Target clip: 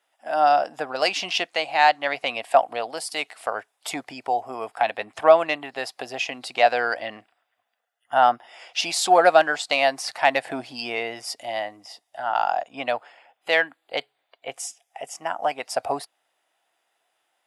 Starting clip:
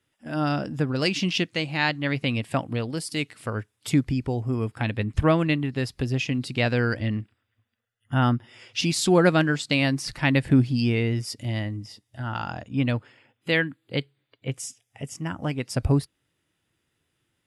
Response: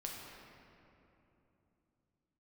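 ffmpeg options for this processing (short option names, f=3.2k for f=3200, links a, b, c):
-af "acontrast=44,highpass=f=720:t=q:w=5.4,volume=-3.5dB"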